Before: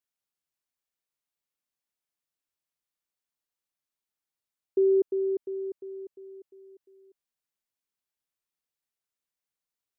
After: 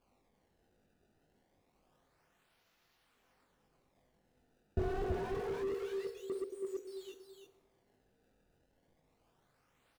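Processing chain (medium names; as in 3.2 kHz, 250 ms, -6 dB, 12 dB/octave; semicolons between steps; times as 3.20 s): 4.79–6.30 s: elliptic band-stop 190–440 Hz; in parallel at -1 dB: compression, threshold -48 dBFS, peak gain reduction 23.5 dB; on the sum: decimation with a swept rate 23×, swing 160% 0.27 Hz; chorus voices 4, 1.1 Hz, delay 22 ms, depth 3 ms; delay 326 ms -8.5 dB; reverberation RT60 1.2 s, pre-delay 3 ms, DRR 8 dB; slew-rate limiter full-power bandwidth 2 Hz; trim +12 dB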